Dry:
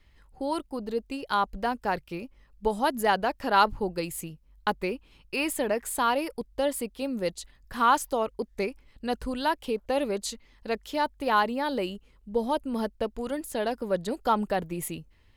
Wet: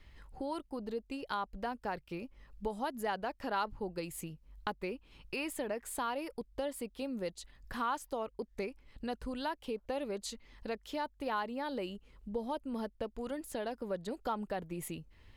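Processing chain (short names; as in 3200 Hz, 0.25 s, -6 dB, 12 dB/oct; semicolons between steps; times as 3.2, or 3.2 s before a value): high shelf 6800 Hz -5 dB; compressor 2:1, threshold -48 dBFS, peak gain reduction 17.5 dB; gain +3 dB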